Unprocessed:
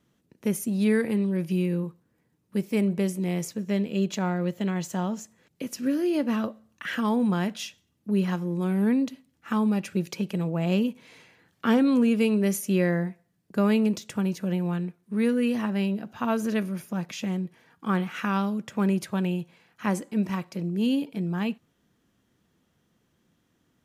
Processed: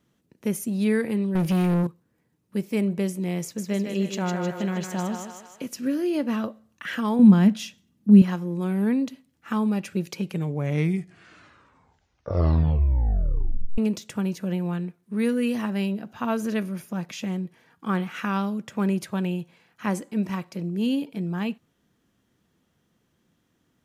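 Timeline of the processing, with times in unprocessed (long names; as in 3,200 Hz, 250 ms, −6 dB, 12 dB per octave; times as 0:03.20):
0:01.35–0:01.87: leveller curve on the samples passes 3
0:03.42–0:05.66: feedback echo with a high-pass in the loop 155 ms, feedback 55%, level −4 dB
0:07.19–0:08.22: parametric band 210 Hz +13.5 dB
0:10.12: tape stop 3.66 s
0:15.19–0:15.93: high-shelf EQ 5,100 Hz +4.5 dB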